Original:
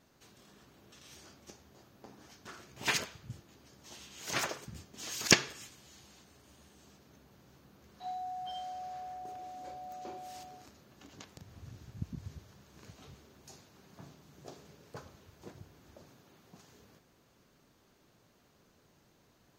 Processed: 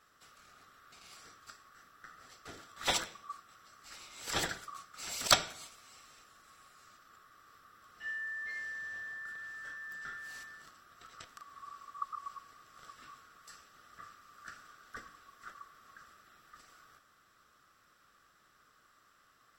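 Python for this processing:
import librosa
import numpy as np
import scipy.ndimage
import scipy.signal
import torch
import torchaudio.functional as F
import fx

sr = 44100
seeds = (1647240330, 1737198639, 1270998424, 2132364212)

y = fx.band_swap(x, sr, width_hz=1000)
y = np.clip(y, -10.0 ** (-13.5 / 20.0), 10.0 ** (-13.5 / 20.0))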